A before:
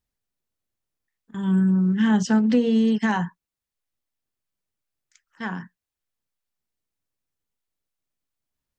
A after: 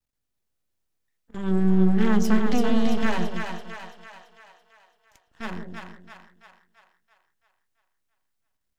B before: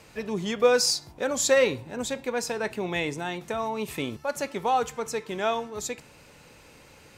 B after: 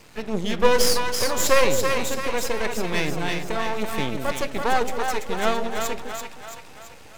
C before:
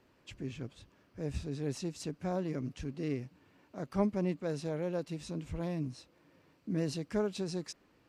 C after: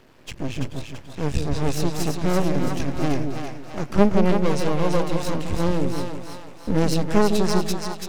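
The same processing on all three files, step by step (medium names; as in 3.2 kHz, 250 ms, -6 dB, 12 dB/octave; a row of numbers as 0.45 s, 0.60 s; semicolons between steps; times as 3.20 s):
half-wave rectifier; on a send: two-band feedback delay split 600 Hz, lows 159 ms, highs 335 ms, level -4.5 dB; on the sum: normalise loudness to -24 LUFS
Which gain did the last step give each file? +1.5 dB, +6.0 dB, +17.0 dB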